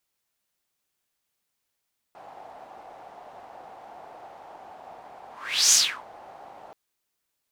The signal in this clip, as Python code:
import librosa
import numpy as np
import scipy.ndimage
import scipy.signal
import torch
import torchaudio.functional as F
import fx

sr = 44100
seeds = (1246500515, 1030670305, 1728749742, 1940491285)

y = fx.whoosh(sr, seeds[0], length_s=4.58, peak_s=3.58, rise_s=0.44, fall_s=0.33, ends_hz=760.0, peak_hz=6500.0, q=4.7, swell_db=28.5)